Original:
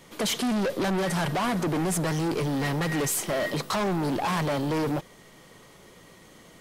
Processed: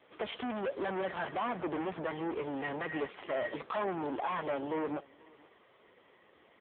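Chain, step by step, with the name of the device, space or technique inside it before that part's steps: satellite phone (band-pass 340–3300 Hz; delay 488 ms -24 dB; trim -4.5 dB; AMR-NB 5.9 kbps 8 kHz)

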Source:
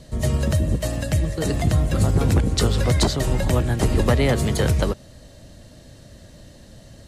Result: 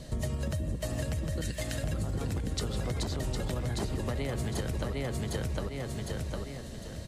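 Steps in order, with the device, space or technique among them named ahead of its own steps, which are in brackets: 1.41–1.84 s: elliptic high-pass 1.5 kHz; feedback delay 756 ms, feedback 30%, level -4.5 dB; serial compression, leveller first (compression, threshold -17 dBFS, peak gain reduction 5.5 dB; compression 6:1, threshold -30 dBFS, peak gain reduction 13 dB)

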